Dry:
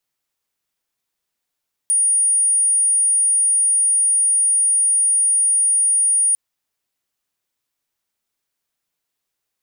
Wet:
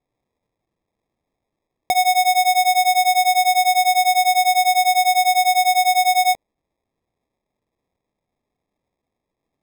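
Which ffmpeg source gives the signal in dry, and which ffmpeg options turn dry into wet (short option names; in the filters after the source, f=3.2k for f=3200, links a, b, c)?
-f lavfi -i "aevalsrc='0.224*sin(2*PI*9560*t)':d=4.45:s=44100"
-af "acrusher=samples=30:mix=1:aa=0.000001"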